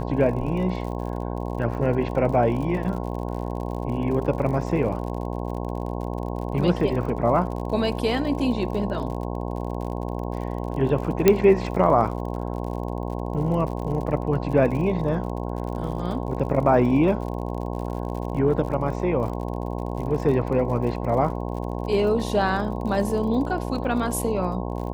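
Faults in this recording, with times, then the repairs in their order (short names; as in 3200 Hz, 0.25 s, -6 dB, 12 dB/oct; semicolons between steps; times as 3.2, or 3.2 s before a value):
buzz 60 Hz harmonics 18 -29 dBFS
crackle 56/s -33 dBFS
11.28 pop -2 dBFS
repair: de-click; de-hum 60 Hz, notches 18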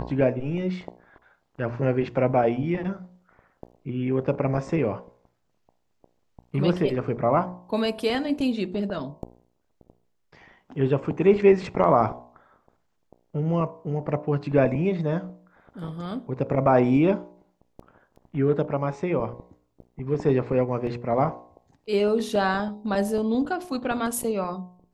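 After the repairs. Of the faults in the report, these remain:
none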